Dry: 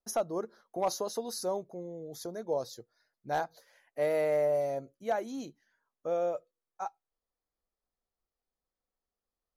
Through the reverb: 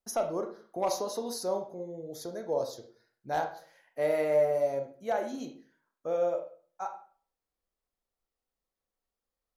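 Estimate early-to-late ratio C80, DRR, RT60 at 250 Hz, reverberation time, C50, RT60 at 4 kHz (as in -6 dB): 13.0 dB, 4.0 dB, 0.50 s, 0.45 s, 9.0 dB, 0.35 s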